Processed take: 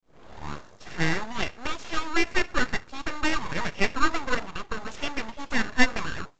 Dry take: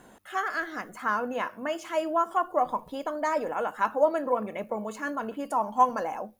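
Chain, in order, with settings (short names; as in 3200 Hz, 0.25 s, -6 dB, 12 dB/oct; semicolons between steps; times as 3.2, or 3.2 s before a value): tape start at the beginning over 1.41 s; HPF 1100 Hz 6 dB/oct; in parallel at -4 dB: sample-and-hold 16×; on the sum: full-wave rectifier; gain +5.5 dB; µ-law 128 kbps 16000 Hz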